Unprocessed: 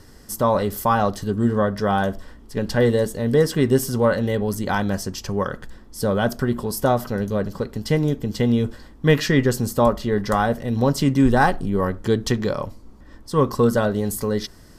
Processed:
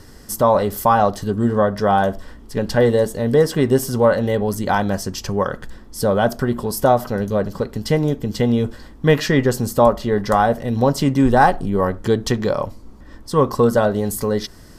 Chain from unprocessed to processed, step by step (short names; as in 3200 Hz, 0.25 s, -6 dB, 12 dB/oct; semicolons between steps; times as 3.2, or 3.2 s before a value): dynamic EQ 720 Hz, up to +6 dB, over -31 dBFS, Q 1.2; in parallel at -2 dB: compressor, threshold -26 dBFS, peak gain reduction 17 dB; on the sum: gain -1 dB